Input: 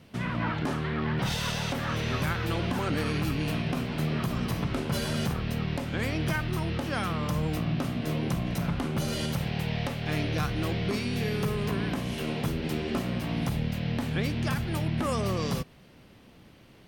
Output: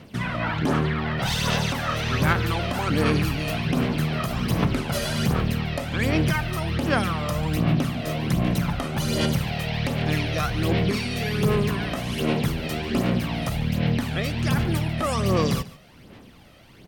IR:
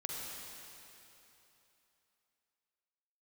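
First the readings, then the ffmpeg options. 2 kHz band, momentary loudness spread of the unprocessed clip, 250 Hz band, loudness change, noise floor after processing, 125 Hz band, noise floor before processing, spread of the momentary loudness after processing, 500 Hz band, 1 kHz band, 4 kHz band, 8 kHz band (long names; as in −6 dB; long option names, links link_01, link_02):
+6.0 dB, 2 LU, +5.0 dB, +5.5 dB, −48 dBFS, +5.5 dB, −54 dBFS, 5 LU, +6.0 dB, +6.0 dB, +6.0 dB, +6.0 dB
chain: -af "lowshelf=frequency=210:gain=-4.5,aphaser=in_gain=1:out_gain=1:delay=1.6:decay=0.53:speed=1.3:type=sinusoidal,aecho=1:1:143:0.112,volume=4.5dB"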